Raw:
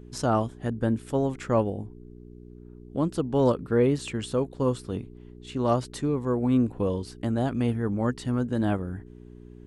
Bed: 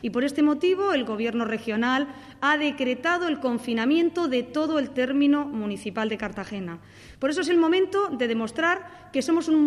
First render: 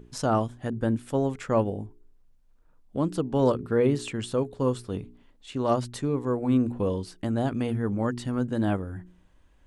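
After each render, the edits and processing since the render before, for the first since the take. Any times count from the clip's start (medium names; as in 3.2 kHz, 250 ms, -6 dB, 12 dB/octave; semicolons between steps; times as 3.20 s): de-hum 60 Hz, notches 7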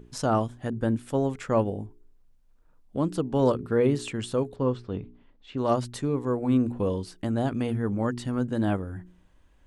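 4.56–5.58 s: distance through air 190 m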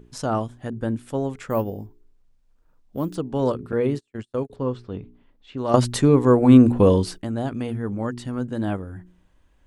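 1.50–3.15 s: careless resampling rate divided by 3×, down none, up hold; 3.72–4.50 s: gate -31 dBFS, range -40 dB; 5.74–7.18 s: gain +11.5 dB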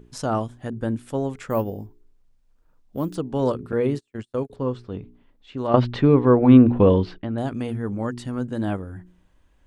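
5.67–7.38 s: low-pass 3.5 kHz 24 dB/octave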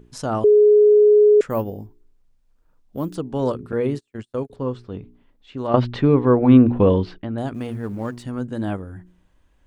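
0.44–1.41 s: bleep 419 Hz -9 dBFS; 7.54–8.24 s: companding laws mixed up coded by A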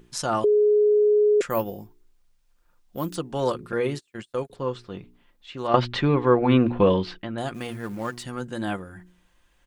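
tilt shelf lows -6 dB, about 860 Hz; comb 5.7 ms, depth 38%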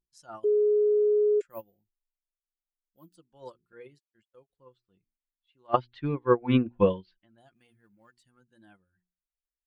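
expander on every frequency bin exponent 1.5; upward expansion 2.5:1, over -31 dBFS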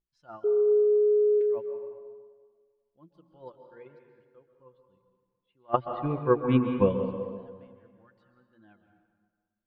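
distance through air 320 m; plate-style reverb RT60 1.7 s, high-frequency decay 0.65×, pre-delay 115 ms, DRR 6 dB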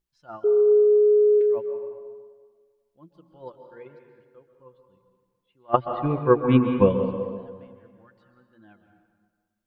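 trim +5 dB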